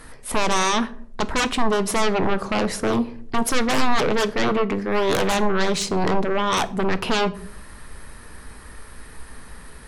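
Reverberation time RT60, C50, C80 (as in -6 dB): 0.60 s, 18.5 dB, 22.0 dB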